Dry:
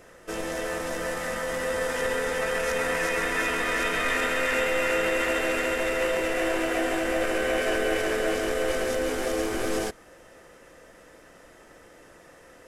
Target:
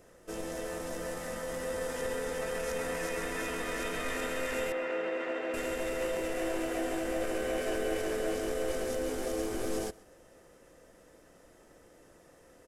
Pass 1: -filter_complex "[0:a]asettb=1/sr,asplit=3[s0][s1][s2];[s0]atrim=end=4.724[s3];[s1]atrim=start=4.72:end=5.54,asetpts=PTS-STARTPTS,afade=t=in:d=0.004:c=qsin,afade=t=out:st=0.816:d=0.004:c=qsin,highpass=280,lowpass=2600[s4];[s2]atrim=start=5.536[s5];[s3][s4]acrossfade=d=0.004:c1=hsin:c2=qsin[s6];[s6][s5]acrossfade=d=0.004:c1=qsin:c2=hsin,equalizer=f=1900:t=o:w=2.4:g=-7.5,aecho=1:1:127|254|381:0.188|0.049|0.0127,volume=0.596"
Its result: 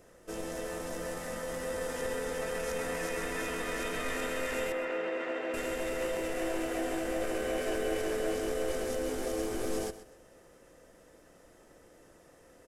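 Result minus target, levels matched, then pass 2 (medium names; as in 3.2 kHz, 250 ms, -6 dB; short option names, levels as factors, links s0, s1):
echo-to-direct +9 dB
-filter_complex "[0:a]asettb=1/sr,asplit=3[s0][s1][s2];[s0]atrim=end=4.724[s3];[s1]atrim=start=4.72:end=5.54,asetpts=PTS-STARTPTS,afade=t=in:d=0.004:c=qsin,afade=t=out:st=0.816:d=0.004:c=qsin,highpass=280,lowpass=2600[s4];[s2]atrim=start=5.536[s5];[s3][s4]acrossfade=d=0.004:c1=hsin:c2=qsin[s6];[s6][s5]acrossfade=d=0.004:c1=qsin:c2=hsin,equalizer=f=1900:t=o:w=2.4:g=-7.5,aecho=1:1:127|254:0.0668|0.0174,volume=0.596"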